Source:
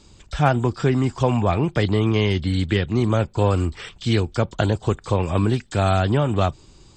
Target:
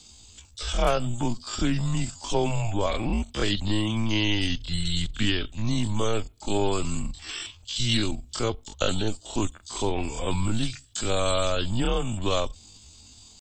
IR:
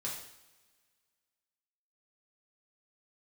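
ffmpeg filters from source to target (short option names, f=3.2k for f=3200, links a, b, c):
-af "afreqshift=-110,atempo=0.52,aexciter=amount=4.4:drive=2.4:freq=2.8k,volume=-5dB"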